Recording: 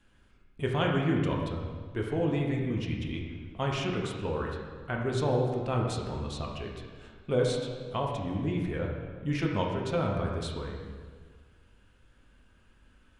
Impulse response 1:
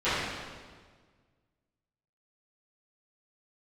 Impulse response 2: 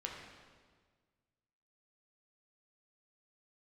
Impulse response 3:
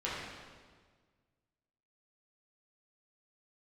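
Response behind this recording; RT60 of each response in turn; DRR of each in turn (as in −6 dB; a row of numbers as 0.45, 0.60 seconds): 2; 1.6, 1.6, 1.6 seconds; −17.5, −1.0, −8.5 decibels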